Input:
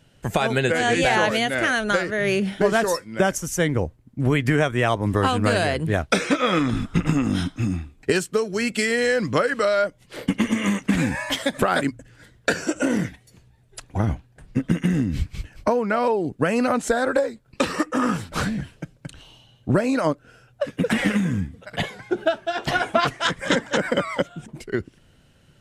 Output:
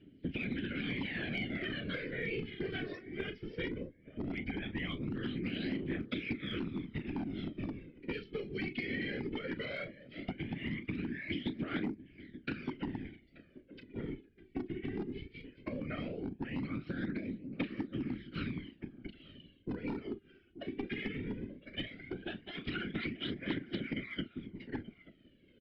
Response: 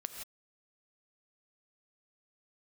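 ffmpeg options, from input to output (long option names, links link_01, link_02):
-filter_complex "[0:a]asplit=3[link_01][link_02][link_03];[link_01]bandpass=frequency=270:width_type=q:width=8,volume=0dB[link_04];[link_02]bandpass=frequency=2290:width_type=q:width=8,volume=-6dB[link_05];[link_03]bandpass=frequency=3010:width_type=q:width=8,volume=-9dB[link_06];[link_04][link_05][link_06]amix=inputs=3:normalize=0,highshelf=frequency=2200:gain=-8.5,asplit=2[link_07][link_08];[link_08]adelay=34,volume=-11dB[link_09];[link_07][link_09]amix=inputs=2:normalize=0,acompressor=threshold=-34dB:ratio=5,afftfilt=real='hypot(re,im)*cos(2*PI*random(0))':imag='hypot(re,im)*sin(2*PI*random(1))':win_size=512:overlap=0.75,asplit=2[link_10][link_11];[link_11]adelay=880,lowpass=frequency=2200:poles=1,volume=-20dB,asplit=2[link_12][link_13];[link_13]adelay=880,lowpass=frequency=2200:poles=1,volume=0.17[link_14];[link_10][link_12][link_14]amix=inputs=3:normalize=0,aresample=11025,volume=35dB,asoftclip=hard,volume=-35dB,aresample=44100,aphaser=in_gain=1:out_gain=1:delay=2.8:decay=0.58:speed=0.17:type=triangular,acrossover=split=260|980[link_15][link_16][link_17];[link_15]acompressor=threshold=-50dB:ratio=4[link_18];[link_16]acompressor=threshold=-53dB:ratio=4[link_19];[link_17]acompressor=threshold=-49dB:ratio=4[link_20];[link_18][link_19][link_20]amix=inputs=3:normalize=0,volume=10.5dB"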